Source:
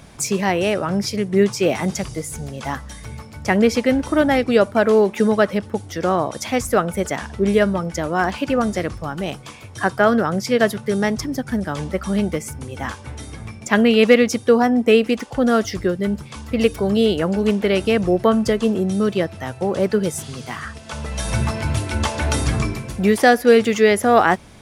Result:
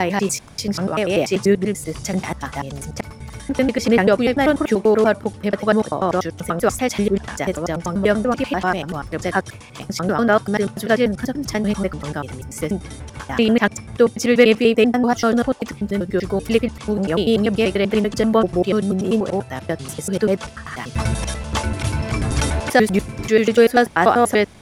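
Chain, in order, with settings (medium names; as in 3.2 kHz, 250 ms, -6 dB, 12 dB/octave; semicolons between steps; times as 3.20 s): slices played last to first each 97 ms, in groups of 6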